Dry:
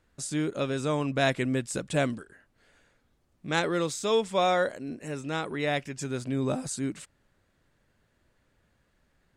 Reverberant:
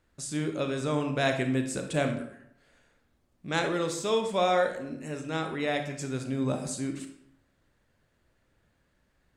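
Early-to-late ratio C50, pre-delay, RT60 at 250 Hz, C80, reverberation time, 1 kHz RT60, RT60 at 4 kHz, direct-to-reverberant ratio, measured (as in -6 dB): 7.5 dB, 28 ms, 0.80 s, 11.0 dB, 0.70 s, 0.70 s, 0.50 s, 5.5 dB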